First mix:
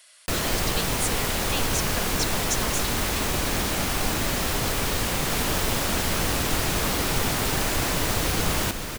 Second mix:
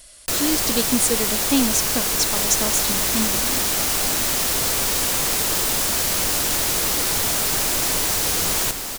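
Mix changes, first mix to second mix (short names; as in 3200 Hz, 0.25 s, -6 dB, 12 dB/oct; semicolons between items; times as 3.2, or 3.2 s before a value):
speech: remove HPF 1100 Hz 12 dB/oct; second sound: entry -2.95 s; master: add tone controls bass -6 dB, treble +9 dB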